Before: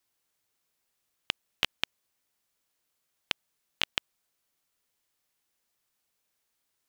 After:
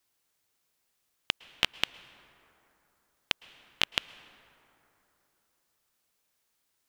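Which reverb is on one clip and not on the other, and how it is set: plate-style reverb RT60 3.4 s, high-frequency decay 0.4×, pre-delay 0.1 s, DRR 17.5 dB; gain +2 dB

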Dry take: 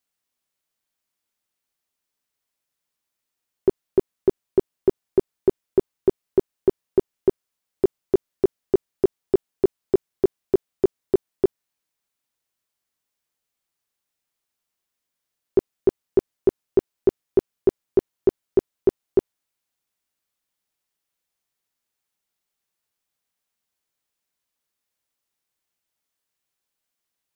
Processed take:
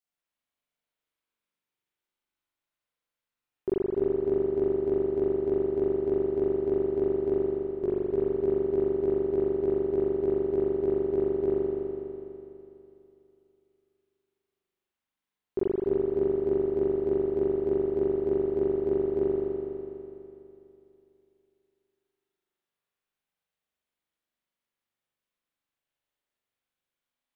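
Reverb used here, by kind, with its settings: spring tank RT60 2.9 s, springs 41 ms, chirp 30 ms, DRR -9 dB; gain -12.5 dB

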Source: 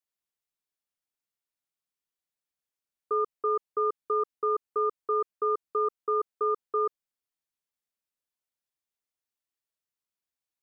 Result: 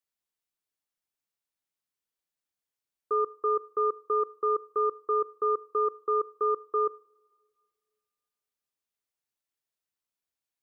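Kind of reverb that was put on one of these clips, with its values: two-slope reverb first 0.51 s, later 2.1 s, from -17 dB, DRR 18 dB

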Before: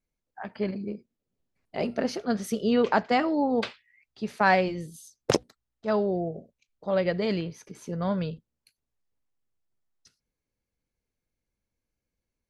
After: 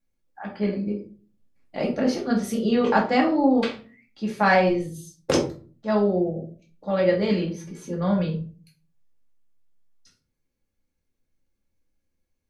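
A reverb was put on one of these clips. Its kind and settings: shoebox room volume 230 m³, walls furnished, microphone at 2.3 m; gain -1 dB

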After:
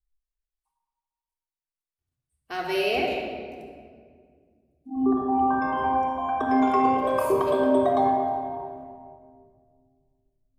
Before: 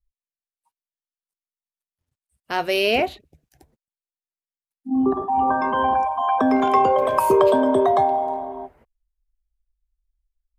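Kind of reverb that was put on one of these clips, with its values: shoebox room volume 3400 m³, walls mixed, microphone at 3.5 m; gain -10 dB

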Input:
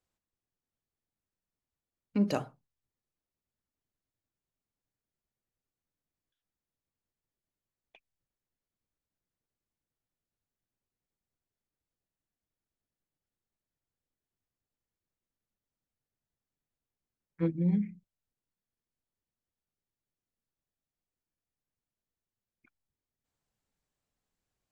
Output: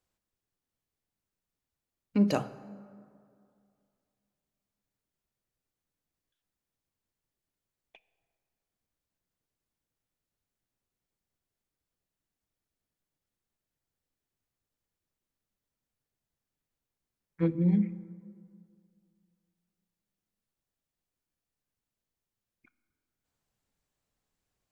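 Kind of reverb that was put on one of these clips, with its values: plate-style reverb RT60 2.4 s, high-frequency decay 0.45×, DRR 15 dB; gain +2.5 dB

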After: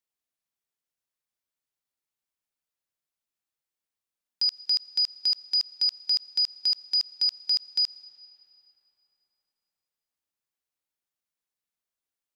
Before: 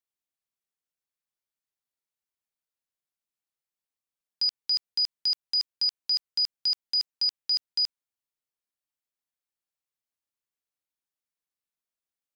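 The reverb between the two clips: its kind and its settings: digital reverb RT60 4.5 s, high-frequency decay 0.65×, pre-delay 45 ms, DRR 15.5 dB; gain +1 dB

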